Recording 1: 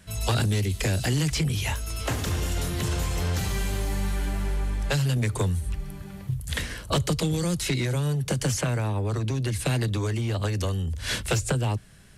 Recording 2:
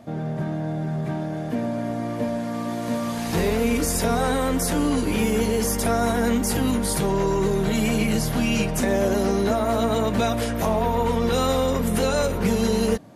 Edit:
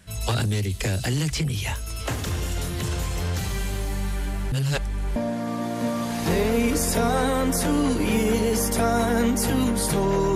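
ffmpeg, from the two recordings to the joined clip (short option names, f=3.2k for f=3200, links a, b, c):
-filter_complex "[0:a]apad=whole_dur=10.35,atrim=end=10.35,asplit=2[a][b];[a]atrim=end=4.522[c];[b]atrim=start=4.518:end=5.162,asetpts=PTS-STARTPTS,areverse[d];[1:a]atrim=start=2.228:end=7.42[e];[c][d]acrossfade=d=0.004:c1=hsin:c2=hsin[f];[f][e]acrossfade=d=0.004:c1=hsin:c2=hsin"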